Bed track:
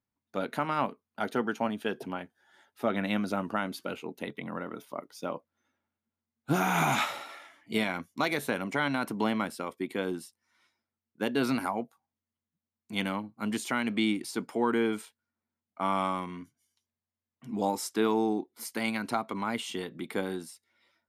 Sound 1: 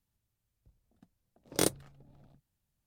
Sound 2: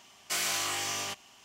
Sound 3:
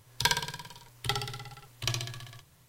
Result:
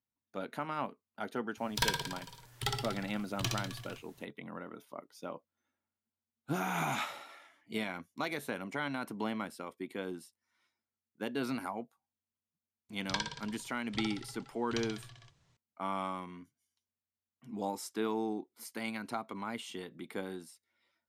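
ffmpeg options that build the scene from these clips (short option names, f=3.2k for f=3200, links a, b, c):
-filter_complex "[3:a]asplit=2[a][b];[0:a]volume=-7.5dB[c];[a]aeval=exprs='clip(val(0),-1,0.0631)':c=same[d];[b]lowpass=f=7k:w=0.5412,lowpass=f=7k:w=1.3066[e];[d]atrim=end=2.68,asetpts=PTS-STARTPTS,volume=-2.5dB,afade=t=in:d=0.004:c=hsin,afade=t=out:st=2.676:d=0.004:c=hsin,adelay=1570[f];[e]atrim=end=2.68,asetpts=PTS-STARTPTS,volume=-9dB,afade=t=in:d=0.004:c=hsin,afade=t=out:st=2.676:d=0.004:c=hsin,adelay=12890[g];[c][f][g]amix=inputs=3:normalize=0"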